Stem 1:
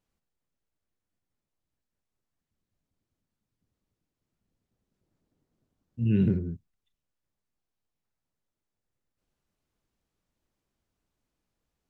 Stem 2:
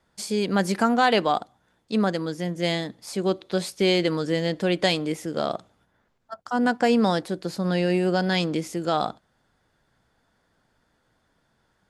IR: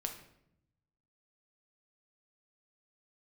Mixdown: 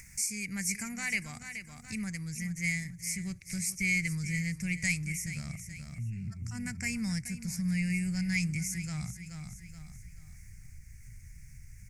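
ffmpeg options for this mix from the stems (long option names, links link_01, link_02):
-filter_complex "[0:a]alimiter=limit=-23.5dB:level=0:latency=1,volume=-4.5dB,asplit=2[link_01][link_02];[link_02]volume=-5.5dB[link_03];[1:a]asubboost=boost=9.5:cutoff=110,volume=-4dB,asplit=3[link_04][link_05][link_06];[link_05]volume=-13dB[link_07];[link_06]apad=whole_len=524743[link_08];[link_01][link_08]sidechaincompress=threshold=-47dB:ratio=8:attack=16:release=126[link_09];[link_03][link_07]amix=inputs=2:normalize=0,aecho=0:1:428|856|1284|1712:1|0.26|0.0676|0.0176[link_10];[link_09][link_04][link_10]amix=inputs=3:normalize=0,firequalizer=gain_entry='entry(120,0);entry(340,-24);entry(520,-30);entry(1400,-19);entry(2200,10);entry(3300,-27);entry(5700,9)':delay=0.05:min_phase=1,acompressor=mode=upward:threshold=-34dB:ratio=2.5"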